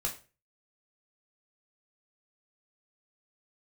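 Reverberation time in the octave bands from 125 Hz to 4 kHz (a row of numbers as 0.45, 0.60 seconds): 0.45, 0.35, 0.40, 0.30, 0.30, 0.30 seconds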